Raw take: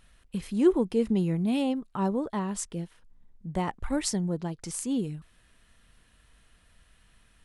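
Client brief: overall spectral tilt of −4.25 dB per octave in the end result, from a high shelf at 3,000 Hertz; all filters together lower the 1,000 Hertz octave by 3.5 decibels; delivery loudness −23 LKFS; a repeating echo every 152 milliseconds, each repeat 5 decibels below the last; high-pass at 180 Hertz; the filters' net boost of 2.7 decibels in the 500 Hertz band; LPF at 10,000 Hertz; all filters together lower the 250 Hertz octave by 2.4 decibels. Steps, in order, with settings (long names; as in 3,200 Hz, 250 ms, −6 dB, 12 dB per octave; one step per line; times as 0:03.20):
high-pass filter 180 Hz
low-pass filter 10,000 Hz
parametric band 250 Hz −3.5 dB
parametric band 500 Hz +6.5 dB
parametric band 1,000 Hz −7.5 dB
high-shelf EQ 3,000 Hz +7 dB
repeating echo 152 ms, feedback 56%, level −5 dB
level +4.5 dB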